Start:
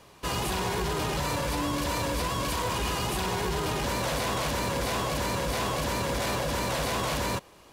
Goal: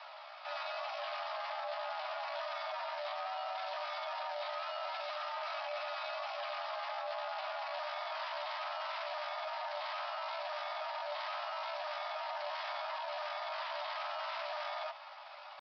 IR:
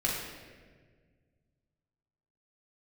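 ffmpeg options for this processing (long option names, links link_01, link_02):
-af "asoftclip=type=tanh:threshold=-28dB,asetrate=21830,aresample=44100,alimiter=level_in=15.5dB:limit=-24dB:level=0:latency=1:release=19,volume=-15.5dB,afreqshift=390,aresample=8000,aresample=44100,asetrate=62367,aresample=44100,atempo=0.707107,volume=4dB"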